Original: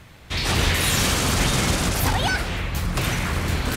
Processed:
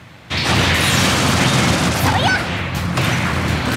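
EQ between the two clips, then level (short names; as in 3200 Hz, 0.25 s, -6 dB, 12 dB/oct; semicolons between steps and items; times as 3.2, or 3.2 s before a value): HPF 93 Hz 24 dB/oct; bell 420 Hz -6 dB 0.26 oct; high shelf 7200 Hz -11.5 dB; +8.0 dB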